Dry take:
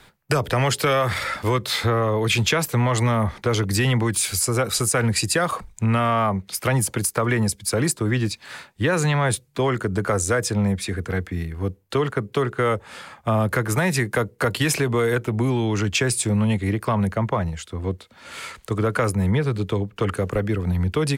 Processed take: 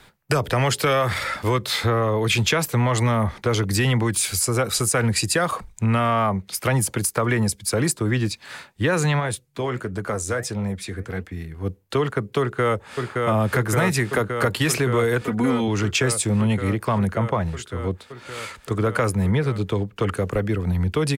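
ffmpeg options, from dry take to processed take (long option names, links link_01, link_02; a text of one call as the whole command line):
ffmpeg -i in.wav -filter_complex "[0:a]asplit=3[link_01][link_02][link_03];[link_01]afade=type=out:start_time=9.19:duration=0.02[link_04];[link_02]flanger=delay=1:depth=9.8:regen=72:speed=1.5:shape=triangular,afade=type=in:start_time=9.19:duration=0.02,afade=type=out:start_time=11.65:duration=0.02[link_05];[link_03]afade=type=in:start_time=11.65:duration=0.02[link_06];[link_04][link_05][link_06]amix=inputs=3:normalize=0,asplit=2[link_07][link_08];[link_08]afade=type=in:start_time=12.4:duration=0.01,afade=type=out:start_time=12.99:duration=0.01,aecho=0:1:570|1140|1710|2280|2850|3420|3990|4560|5130|5700|6270|6840:0.707946|0.601754|0.511491|0.434767|0.369552|0.314119|0.267001|0.226951|0.192909|0.163972|0.139376|0.11847[link_09];[link_07][link_09]amix=inputs=2:normalize=0,asettb=1/sr,asplit=3[link_10][link_11][link_12];[link_10]atrim=end=15.214[link_13];[link_11]atrim=start=15.21:end=15.68,asetpts=PTS-STARTPTS,afade=type=in:duration=0.004:curve=qsin,afade=type=out:start_time=0.466:duration=0.004:curve=qsin,aecho=1:1:4.1:0.65,atrim=end_sample=20727[link_14];[link_12]atrim=start=15.676[link_15];[link_13][link_14]acrossfade=duration=0.004:curve1=hsin:curve2=qsin[link_16];[link_16][link_15]acrossfade=duration=0.004:curve1=qsin:curve2=hsin" out.wav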